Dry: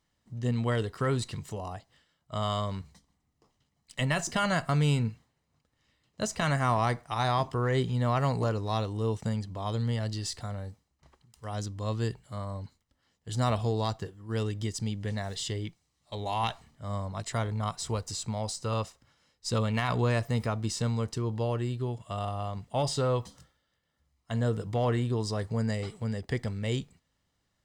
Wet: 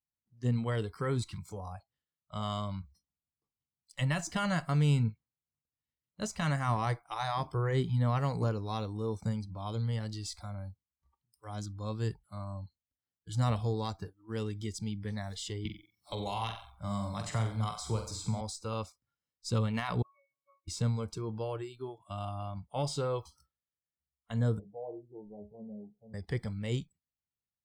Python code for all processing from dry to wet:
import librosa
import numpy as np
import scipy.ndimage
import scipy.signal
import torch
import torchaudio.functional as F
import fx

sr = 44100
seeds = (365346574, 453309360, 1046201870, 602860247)

y = fx.chain(x, sr, fx.room_flutter(wall_m=7.7, rt60_s=0.47),
    fx.band_squash(depth_pct=70), at=(15.65, 18.41))
y = fx.chain(y, sr, fx.cheby1_highpass(hz=960.0, order=2),
    fx.high_shelf(hz=2000.0, db=-6.5),
    fx.octave_resonator(note='C#', decay_s=0.59), at=(20.02, 20.68))
y = fx.chain(y, sr, fx.steep_lowpass(hz=790.0, slope=48),
    fx.comb_fb(f0_hz=69.0, decay_s=0.37, harmonics='all', damping=0.0, mix_pct=80), at=(24.59, 26.14))
y = fx.noise_reduce_blind(y, sr, reduce_db=23)
y = fx.peak_eq(y, sr, hz=110.0, db=6.0, octaves=2.7)
y = fx.notch(y, sr, hz=650.0, q=12.0)
y = y * librosa.db_to_amplitude(-5.5)